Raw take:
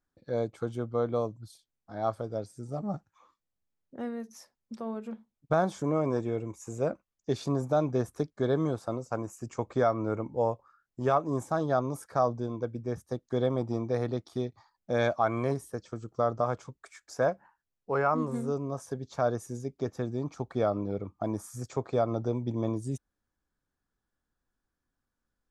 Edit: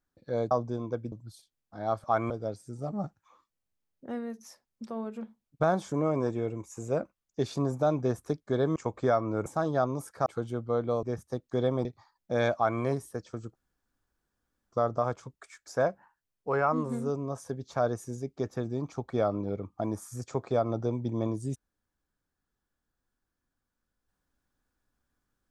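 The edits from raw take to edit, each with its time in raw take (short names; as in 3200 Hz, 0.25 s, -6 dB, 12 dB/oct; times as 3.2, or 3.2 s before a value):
0.51–1.28 swap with 12.21–12.82
8.66–9.49 cut
10.19–11.41 cut
13.64–14.44 cut
15.14–15.4 copy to 2.2
16.14 insert room tone 1.17 s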